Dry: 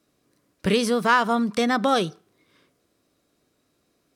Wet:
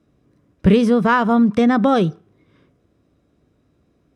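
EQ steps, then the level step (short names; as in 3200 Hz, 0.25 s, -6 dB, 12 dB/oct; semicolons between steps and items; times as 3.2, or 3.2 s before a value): HPF 50 Hz; RIAA curve playback; notch 4400 Hz, Q 10; +2.5 dB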